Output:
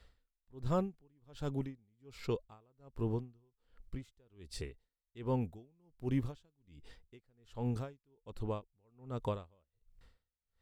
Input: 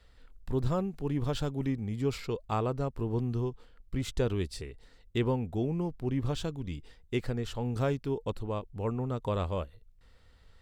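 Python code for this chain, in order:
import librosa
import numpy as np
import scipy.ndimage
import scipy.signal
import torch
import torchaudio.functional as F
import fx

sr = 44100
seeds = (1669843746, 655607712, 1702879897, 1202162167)

y = fx.high_shelf(x, sr, hz=6400.0, db=9.0, at=(5.41, 6.32))
y = y * 10.0 ** (-39 * (0.5 - 0.5 * np.cos(2.0 * np.pi * 1.3 * np.arange(len(y)) / sr)) / 20.0)
y = F.gain(torch.from_numpy(y), -1.0).numpy()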